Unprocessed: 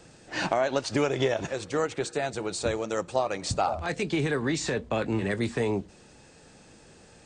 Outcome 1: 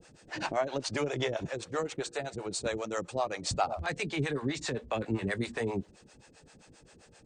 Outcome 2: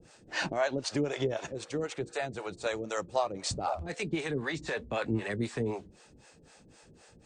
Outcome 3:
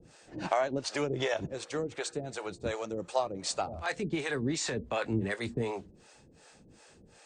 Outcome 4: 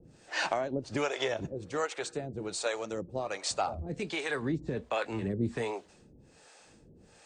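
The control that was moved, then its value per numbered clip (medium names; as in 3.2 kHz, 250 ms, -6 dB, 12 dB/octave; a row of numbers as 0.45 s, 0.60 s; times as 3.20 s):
harmonic tremolo, rate: 7.6 Hz, 3.9 Hz, 2.7 Hz, 1.3 Hz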